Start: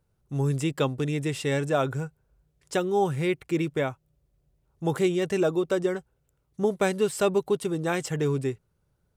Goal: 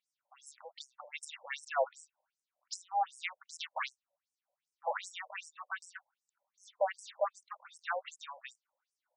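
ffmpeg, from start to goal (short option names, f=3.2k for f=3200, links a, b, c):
-filter_complex "[0:a]asettb=1/sr,asplit=3[a][b][c];[a]atrim=end=3.464[d];[b]atrim=start=3.46:end=5,asetpts=PTS-STARTPTS,afade=t=in:d=0.004:c=qsin,afade=t=out:st=1.536:d=0.004:c=qsin,aeval=exprs='0.2*(cos(1*acos(clip(val(0)/0.2,-1,1)))-cos(1*PI/2))+0.0282*(cos(4*acos(clip(val(0)/0.2,-1,1)))-cos(4*PI/2))+0.0355*(cos(8*acos(clip(val(0)/0.2,-1,1)))-cos(8*PI/2))':c=same[e];[c]atrim=start=4.996[f];[d][e]acrossfade=d=0.004:c1=hsin:c2=qsin[g];[g][f]acrossfade=d=0.004:c1=qsin:c2=hsin,asoftclip=type=tanh:threshold=-17.5dB,afftfilt=real='re*between(b*sr/1024,700*pow(7300/700,0.5+0.5*sin(2*PI*2.6*pts/sr))/1.41,700*pow(7300/700,0.5+0.5*sin(2*PI*2.6*pts/sr))*1.41)':imag='im*between(b*sr/1024,700*pow(7300/700,0.5+0.5*sin(2*PI*2.6*pts/sr))/1.41,700*pow(7300/700,0.5+0.5*sin(2*PI*2.6*pts/sr))*1.41)':win_size=1024:overlap=0.75,volume=1dB"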